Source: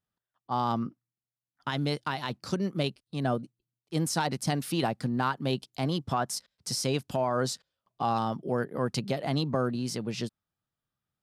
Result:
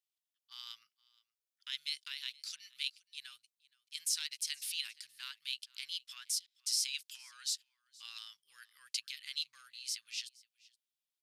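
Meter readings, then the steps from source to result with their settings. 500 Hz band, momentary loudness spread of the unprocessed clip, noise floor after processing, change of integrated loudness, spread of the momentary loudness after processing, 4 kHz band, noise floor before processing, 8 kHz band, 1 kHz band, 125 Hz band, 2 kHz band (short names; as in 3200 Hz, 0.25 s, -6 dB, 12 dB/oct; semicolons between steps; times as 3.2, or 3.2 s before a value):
under -40 dB, 6 LU, under -85 dBFS, -8.0 dB, 15 LU, 0.0 dB, under -85 dBFS, 0.0 dB, -33.0 dB, under -40 dB, -9.0 dB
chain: inverse Chebyshev high-pass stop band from 730 Hz, stop band 60 dB; echo 0.471 s -24 dB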